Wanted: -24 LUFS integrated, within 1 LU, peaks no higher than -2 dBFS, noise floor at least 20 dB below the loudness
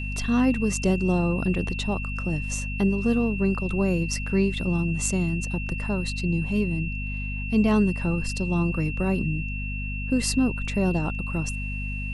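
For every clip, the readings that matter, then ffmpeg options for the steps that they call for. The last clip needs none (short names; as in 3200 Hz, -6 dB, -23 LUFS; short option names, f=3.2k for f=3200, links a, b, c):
hum 50 Hz; harmonics up to 250 Hz; hum level -29 dBFS; steady tone 2700 Hz; tone level -34 dBFS; loudness -25.5 LUFS; peak -7.5 dBFS; loudness target -24.0 LUFS
-> -af "bandreject=f=50:t=h:w=6,bandreject=f=100:t=h:w=6,bandreject=f=150:t=h:w=6,bandreject=f=200:t=h:w=6,bandreject=f=250:t=h:w=6"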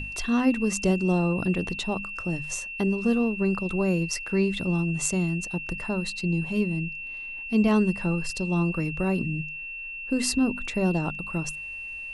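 hum none; steady tone 2700 Hz; tone level -34 dBFS
-> -af "bandreject=f=2.7k:w=30"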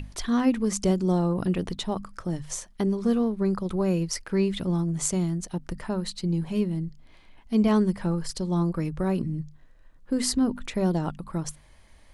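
steady tone none; loudness -27.0 LUFS; peak -7.5 dBFS; loudness target -24.0 LUFS
-> -af "volume=3dB"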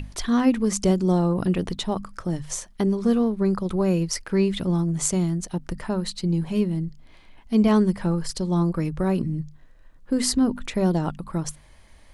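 loudness -24.0 LUFS; peak -4.5 dBFS; noise floor -51 dBFS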